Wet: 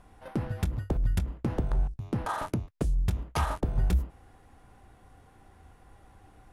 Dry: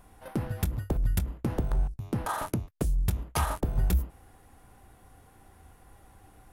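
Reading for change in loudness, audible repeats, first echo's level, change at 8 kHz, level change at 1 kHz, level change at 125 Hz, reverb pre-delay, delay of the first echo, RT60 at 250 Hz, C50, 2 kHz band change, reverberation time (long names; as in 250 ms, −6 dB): 0.0 dB, no echo audible, no echo audible, −6.5 dB, 0.0 dB, 0.0 dB, no reverb audible, no echo audible, no reverb audible, no reverb audible, −0.5 dB, no reverb audible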